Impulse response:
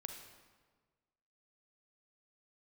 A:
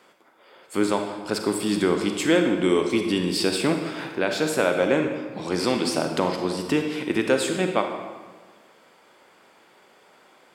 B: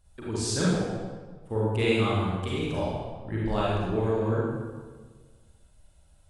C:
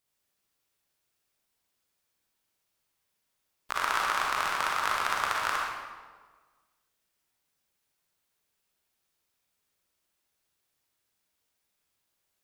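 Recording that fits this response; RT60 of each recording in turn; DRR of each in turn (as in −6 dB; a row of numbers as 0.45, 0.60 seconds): A; 1.5, 1.5, 1.5 seconds; 4.5, −7.5, −3.0 decibels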